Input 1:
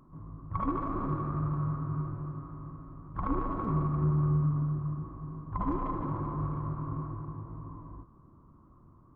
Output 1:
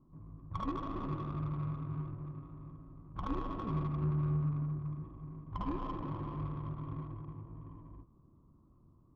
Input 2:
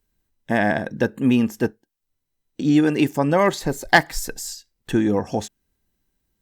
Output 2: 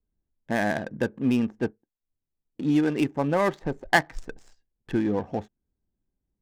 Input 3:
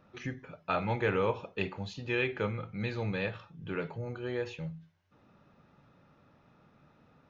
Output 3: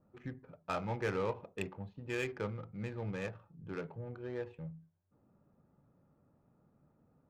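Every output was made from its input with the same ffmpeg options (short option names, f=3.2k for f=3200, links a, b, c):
-af "adynamicequalizer=threshold=0.00282:dfrequency=4400:dqfactor=2.1:tfrequency=4400:tqfactor=2.1:attack=5:release=100:ratio=0.375:range=3:mode=cutabove:tftype=bell,adynamicsmooth=sensitivity=4:basefreq=860,volume=-5.5dB"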